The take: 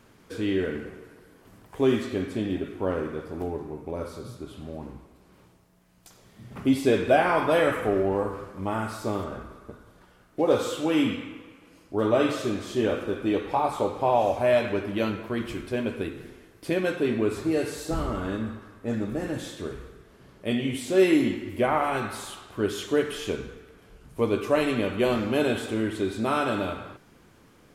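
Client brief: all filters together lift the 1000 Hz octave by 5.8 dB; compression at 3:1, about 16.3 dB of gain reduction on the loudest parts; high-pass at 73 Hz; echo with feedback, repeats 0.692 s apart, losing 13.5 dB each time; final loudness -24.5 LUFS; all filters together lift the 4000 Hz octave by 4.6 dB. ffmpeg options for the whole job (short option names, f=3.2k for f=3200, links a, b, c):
-af "highpass=73,equalizer=f=1k:t=o:g=7.5,equalizer=f=4k:t=o:g=5.5,acompressor=threshold=-35dB:ratio=3,aecho=1:1:692|1384:0.211|0.0444,volume=12dB"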